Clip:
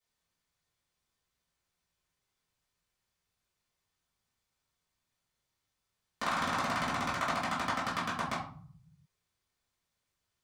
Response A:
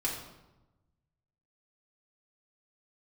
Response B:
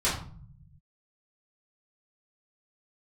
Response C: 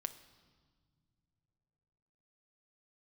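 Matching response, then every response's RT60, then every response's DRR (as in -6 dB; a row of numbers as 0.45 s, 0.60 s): B; 1.0 s, 0.45 s, no single decay rate; -5.5 dB, -10.5 dB, 9.0 dB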